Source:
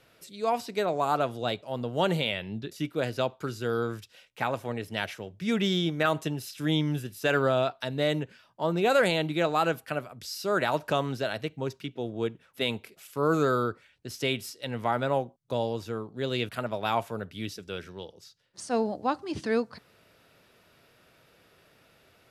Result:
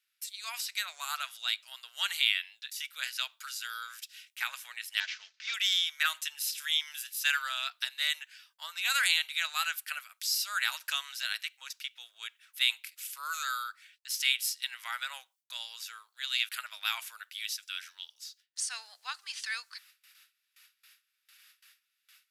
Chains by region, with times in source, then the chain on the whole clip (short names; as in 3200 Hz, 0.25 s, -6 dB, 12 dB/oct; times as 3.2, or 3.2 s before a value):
5–5.54 CVSD 32 kbps + high shelf 4000 Hz -6 dB + comb 4.6 ms, depth 45%
whole clip: gate with hold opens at -50 dBFS; HPF 1500 Hz 24 dB/oct; tilt +3 dB/oct